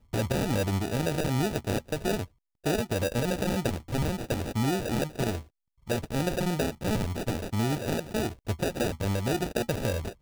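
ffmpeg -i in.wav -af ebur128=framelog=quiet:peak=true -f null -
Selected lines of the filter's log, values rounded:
Integrated loudness:
  I:         -29.7 LUFS
  Threshold: -39.8 LUFS
Loudness range:
  LRA:         1.1 LU
  Threshold: -50.0 LUFS
  LRA low:   -30.5 LUFS
  LRA high:  -29.4 LUFS
True peak:
  Peak:      -14.4 dBFS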